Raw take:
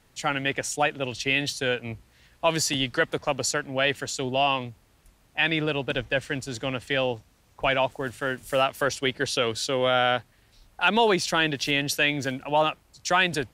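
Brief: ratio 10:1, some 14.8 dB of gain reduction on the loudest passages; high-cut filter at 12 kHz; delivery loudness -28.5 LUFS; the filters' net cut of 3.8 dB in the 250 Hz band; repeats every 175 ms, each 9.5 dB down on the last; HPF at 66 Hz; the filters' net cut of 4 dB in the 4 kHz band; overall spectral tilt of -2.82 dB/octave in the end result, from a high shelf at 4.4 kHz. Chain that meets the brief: high-pass 66 Hz; low-pass 12 kHz; peaking EQ 250 Hz -5 dB; peaking EQ 4 kHz -9 dB; treble shelf 4.4 kHz +6 dB; compression 10:1, threshold -33 dBFS; feedback delay 175 ms, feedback 33%, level -9.5 dB; trim +8.5 dB

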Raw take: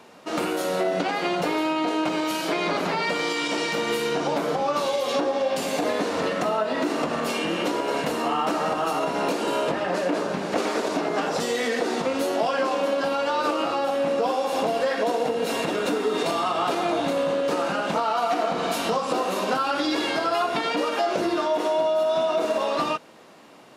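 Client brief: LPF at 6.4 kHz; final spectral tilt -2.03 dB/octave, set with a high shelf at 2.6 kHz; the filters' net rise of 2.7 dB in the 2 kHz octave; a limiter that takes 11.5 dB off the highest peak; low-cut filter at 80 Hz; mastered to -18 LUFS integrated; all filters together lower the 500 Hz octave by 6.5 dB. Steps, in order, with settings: high-pass 80 Hz; low-pass 6.4 kHz; peaking EQ 500 Hz -8.5 dB; peaking EQ 2 kHz +7 dB; treble shelf 2.6 kHz -6.5 dB; trim +13 dB; peak limiter -10 dBFS

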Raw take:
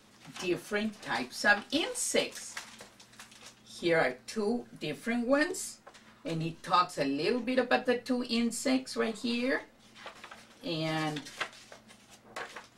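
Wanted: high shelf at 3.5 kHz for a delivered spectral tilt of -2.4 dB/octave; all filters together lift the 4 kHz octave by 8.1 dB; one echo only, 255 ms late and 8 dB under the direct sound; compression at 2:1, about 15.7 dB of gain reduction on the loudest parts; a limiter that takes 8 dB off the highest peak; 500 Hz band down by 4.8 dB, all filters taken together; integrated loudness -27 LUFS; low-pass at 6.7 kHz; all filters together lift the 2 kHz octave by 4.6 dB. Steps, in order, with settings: low-pass 6.7 kHz; peaking EQ 500 Hz -6 dB; peaking EQ 2 kHz +3.5 dB; treble shelf 3.5 kHz +5.5 dB; peaking EQ 4 kHz +6 dB; compression 2:1, threshold -47 dBFS; peak limiter -31 dBFS; delay 255 ms -8 dB; trim +15.5 dB

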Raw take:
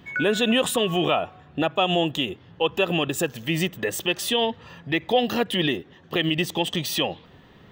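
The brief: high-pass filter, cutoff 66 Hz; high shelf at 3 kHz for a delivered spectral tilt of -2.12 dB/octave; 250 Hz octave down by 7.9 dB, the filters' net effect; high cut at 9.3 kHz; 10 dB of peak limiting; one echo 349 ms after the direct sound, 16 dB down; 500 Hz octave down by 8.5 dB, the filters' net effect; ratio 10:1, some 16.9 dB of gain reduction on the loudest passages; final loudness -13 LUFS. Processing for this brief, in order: high-pass 66 Hz; low-pass 9.3 kHz; peaking EQ 250 Hz -8.5 dB; peaking EQ 500 Hz -8.5 dB; treble shelf 3 kHz +9 dB; compression 10:1, threshold -35 dBFS; peak limiter -30.5 dBFS; delay 349 ms -16 dB; trim +27.5 dB

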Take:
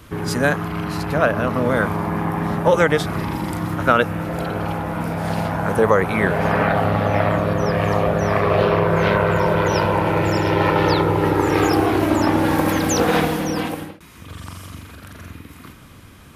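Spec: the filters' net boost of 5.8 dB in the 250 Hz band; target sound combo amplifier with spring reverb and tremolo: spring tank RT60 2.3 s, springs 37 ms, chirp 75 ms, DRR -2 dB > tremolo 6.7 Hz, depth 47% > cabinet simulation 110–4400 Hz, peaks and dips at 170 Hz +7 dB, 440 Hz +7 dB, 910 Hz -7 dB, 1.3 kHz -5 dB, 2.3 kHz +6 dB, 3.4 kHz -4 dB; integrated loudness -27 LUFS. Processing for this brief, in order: peaking EQ 250 Hz +5 dB; spring tank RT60 2.3 s, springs 37 ms, chirp 75 ms, DRR -2 dB; tremolo 6.7 Hz, depth 47%; cabinet simulation 110–4400 Hz, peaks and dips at 170 Hz +7 dB, 440 Hz +7 dB, 910 Hz -7 dB, 1.3 kHz -5 dB, 2.3 kHz +6 dB, 3.4 kHz -4 dB; trim -14 dB

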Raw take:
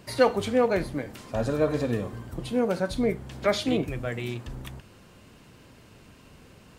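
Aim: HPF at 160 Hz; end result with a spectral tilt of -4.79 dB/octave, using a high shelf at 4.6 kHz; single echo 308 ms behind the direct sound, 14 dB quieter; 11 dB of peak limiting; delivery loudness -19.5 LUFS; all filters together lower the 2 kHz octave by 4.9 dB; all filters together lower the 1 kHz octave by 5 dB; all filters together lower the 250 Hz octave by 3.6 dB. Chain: high-pass 160 Hz; peaking EQ 250 Hz -3 dB; peaking EQ 1 kHz -6 dB; peaking EQ 2 kHz -5 dB; treble shelf 4.6 kHz +4 dB; peak limiter -21.5 dBFS; delay 308 ms -14 dB; trim +13.5 dB

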